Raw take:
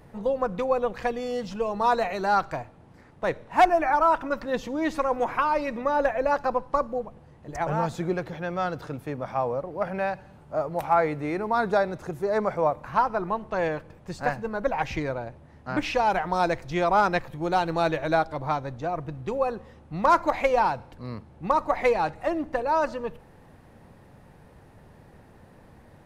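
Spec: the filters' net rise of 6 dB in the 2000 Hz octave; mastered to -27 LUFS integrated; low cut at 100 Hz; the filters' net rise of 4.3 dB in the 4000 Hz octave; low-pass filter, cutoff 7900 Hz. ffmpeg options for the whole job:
-af "highpass=100,lowpass=7.9k,equalizer=f=2k:t=o:g=7.5,equalizer=f=4k:t=o:g=3,volume=-2.5dB"

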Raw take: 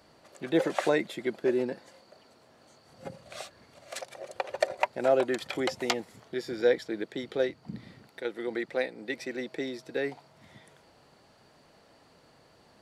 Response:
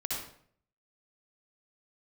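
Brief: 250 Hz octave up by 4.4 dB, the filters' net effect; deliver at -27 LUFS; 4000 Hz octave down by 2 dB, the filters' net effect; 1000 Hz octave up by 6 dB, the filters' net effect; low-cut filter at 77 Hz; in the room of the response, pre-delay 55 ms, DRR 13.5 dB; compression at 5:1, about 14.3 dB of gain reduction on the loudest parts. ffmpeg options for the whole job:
-filter_complex "[0:a]highpass=77,equalizer=f=250:t=o:g=5.5,equalizer=f=1k:t=o:g=8,equalizer=f=4k:t=o:g=-3,acompressor=threshold=-32dB:ratio=5,asplit=2[a][b];[1:a]atrim=start_sample=2205,adelay=55[c];[b][c]afir=irnorm=-1:irlink=0,volume=-17.5dB[d];[a][d]amix=inputs=2:normalize=0,volume=10.5dB"

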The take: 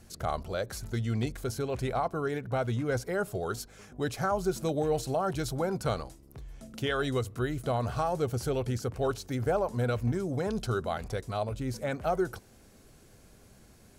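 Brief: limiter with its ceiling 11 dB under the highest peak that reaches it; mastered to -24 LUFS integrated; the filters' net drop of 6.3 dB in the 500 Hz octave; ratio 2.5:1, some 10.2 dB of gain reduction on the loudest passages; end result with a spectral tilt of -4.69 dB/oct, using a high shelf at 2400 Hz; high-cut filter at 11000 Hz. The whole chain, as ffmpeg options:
-af "lowpass=11k,equalizer=f=500:t=o:g=-8.5,highshelf=f=2.4k:g=6,acompressor=threshold=-41dB:ratio=2.5,volume=19.5dB,alimiter=limit=-14dB:level=0:latency=1"

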